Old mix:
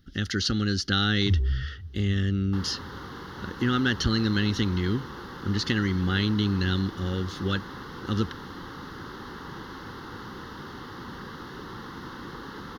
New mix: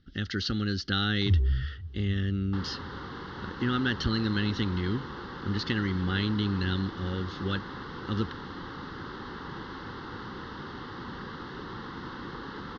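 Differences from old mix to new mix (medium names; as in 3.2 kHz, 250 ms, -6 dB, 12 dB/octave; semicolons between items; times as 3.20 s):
speech -3.5 dB; master: add low-pass 4.9 kHz 24 dB/octave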